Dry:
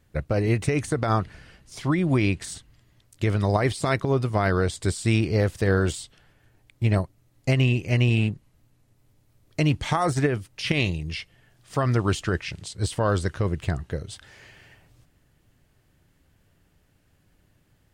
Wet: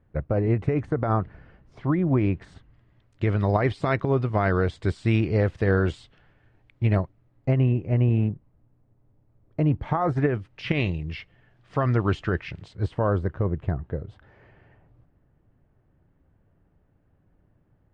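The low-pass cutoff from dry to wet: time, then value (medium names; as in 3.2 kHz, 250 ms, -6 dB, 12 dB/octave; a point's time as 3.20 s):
2.25 s 1.3 kHz
3.39 s 2.5 kHz
6.94 s 2.5 kHz
7.69 s 1 kHz
9.80 s 1 kHz
10.48 s 2.3 kHz
12.58 s 2.3 kHz
13.18 s 1.1 kHz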